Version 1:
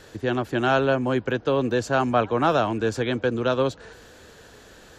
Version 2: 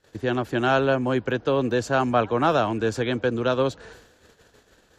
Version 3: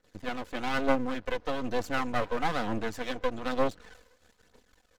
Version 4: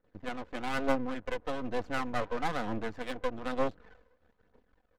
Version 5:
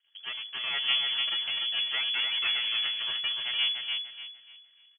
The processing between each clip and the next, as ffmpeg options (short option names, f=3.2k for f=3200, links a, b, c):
-af "agate=range=-22dB:threshold=-46dB:ratio=16:detection=peak"
-af "aphaser=in_gain=1:out_gain=1:delay=2.1:decay=0.5:speed=1.1:type=triangular,aecho=1:1:4:0.59,aeval=exprs='max(val(0),0)':c=same,volume=-6.5dB"
-af "adynamicsmooth=sensitivity=6.5:basefreq=1.7k,volume=-3dB"
-filter_complex "[0:a]asplit=2[a][b];[b]aecho=0:1:295|590|885|1180:0.596|0.179|0.0536|0.0161[c];[a][c]amix=inputs=2:normalize=0,lowpass=f=2.9k:t=q:w=0.5098,lowpass=f=2.9k:t=q:w=0.6013,lowpass=f=2.9k:t=q:w=0.9,lowpass=f=2.9k:t=q:w=2.563,afreqshift=-3400"